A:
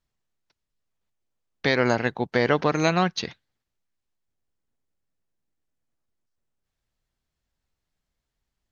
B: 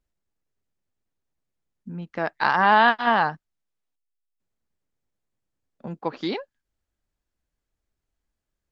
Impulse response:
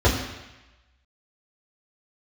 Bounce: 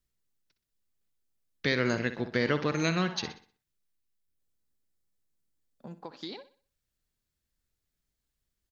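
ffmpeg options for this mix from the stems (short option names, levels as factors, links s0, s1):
-filter_complex "[0:a]equalizer=f=800:t=o:w=0.78:g=-13.5,volume=0.631,asplit=3[s0][s1][s2];[s1]volume=0.251[s3];[1:a]alimiter=limit=0.168:level=0:latency=1,acompressor=threshold=0.0316:ratio=6,aexciter=amount=3.3:drive=3.5:freq=3600,volume=0.376,asplit=2[s4][s5];[s5]volume=0.178[s6];[s2]apad=whole_len=384202[s7];[s4][s7]sidechaincompress=threshold=0.0282:ratio=8:attack=16:release=390[s8];[s3][s6]amix=inputs=2:normalize=0,aecho=0:1:62|124|186|248|310:1|0.36|0.13|0.0467|0.0168[s9];[s0][s8][s9]amix=inputs=3:normalize=0"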